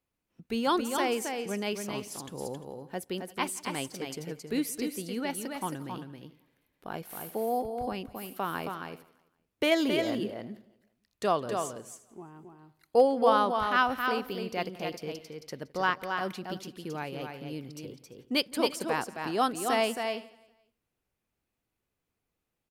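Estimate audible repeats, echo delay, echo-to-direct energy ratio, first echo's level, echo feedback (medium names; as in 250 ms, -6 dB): 4, 170 ms, -5.0 dB, -22.5 dB, no regular repeats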